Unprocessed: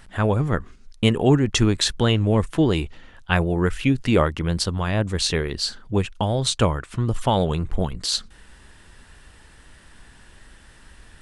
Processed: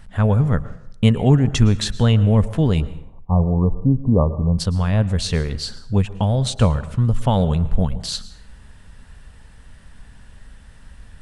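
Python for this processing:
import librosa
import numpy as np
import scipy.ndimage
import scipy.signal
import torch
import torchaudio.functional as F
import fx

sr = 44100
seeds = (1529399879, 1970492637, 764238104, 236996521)

y = fx.peak_eq(x, sr, hz=340.0, db=-14.0, octaves=0.36)
y = fx.brickwall_lowpass(y, sr, high_hz=1200.0, at=(2.8, 4.58), fade=0.02)
y = fx.low_shelf(y, sr, hz=490.0, db=10.5)
y = fx.rev_plate(y, sr, seeds[0], rt60_s=0.71, hf_ratio=0.7, predelay_ms=100, drr_db=15.5)
y = y * 10.0 ** (-3.5 / 20.0)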